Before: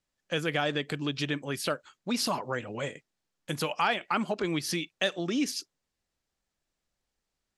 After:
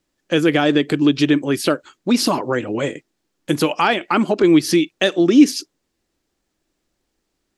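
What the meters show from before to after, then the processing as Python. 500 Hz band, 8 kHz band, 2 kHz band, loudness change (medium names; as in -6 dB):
+14.0 dB, +9.0 dB, +9.0 dB, +13.5 dB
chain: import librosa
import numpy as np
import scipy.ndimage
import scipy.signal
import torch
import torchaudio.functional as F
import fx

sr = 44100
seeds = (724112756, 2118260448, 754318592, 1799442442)

y = fx.peak_eq(x, sr, hz=320.0, db=11.5, octaves=0.8)
y = F.gain(torch.from_numpy(y), 9.0).numpy()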